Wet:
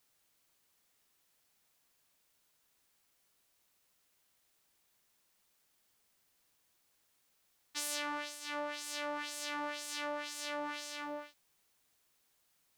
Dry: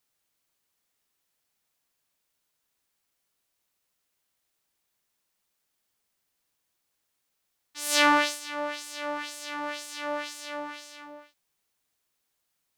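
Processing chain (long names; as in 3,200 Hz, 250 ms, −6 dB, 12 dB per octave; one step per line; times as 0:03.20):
downward compressor 12 to 1, threshold −37 dBFS, peak gain reduction 22.5 dB
level +3.5 dB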